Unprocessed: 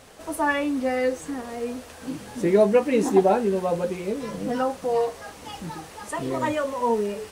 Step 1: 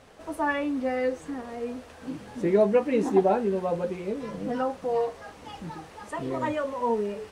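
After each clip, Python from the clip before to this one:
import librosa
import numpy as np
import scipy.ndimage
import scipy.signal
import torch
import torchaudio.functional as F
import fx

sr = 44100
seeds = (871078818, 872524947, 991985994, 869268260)

y = fx.lowpass(x, sr, hz=3000.0, slope=6)
y = F.gain(torch.from_numpy(y), -3.0).numpy()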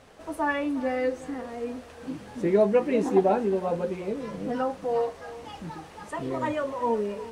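y = x + 10.0 ** (-16.5 / 20.0) * np.pad(x, (int(361 * sr / 1000.0), 0))[:len(x)]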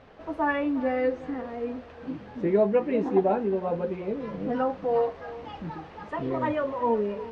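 y = fx.rider(x, sr, range_db=3, speed_s=2.0)
y = fx.air_absorb(y, sr, metres=240.0)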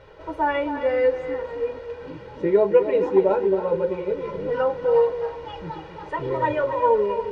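y = x + 0.88 * np.pad(x, (int(2.1 * sr / 1000.0), 0))[:len(x)]
y = y + 10.0 ** (-10.0 / 20.0) * np.pad(y, (int(268 * sr / 1000.0), 0))[:len(y)]
y = F.gain(torch.from_numpy(y), 1.5).numpy()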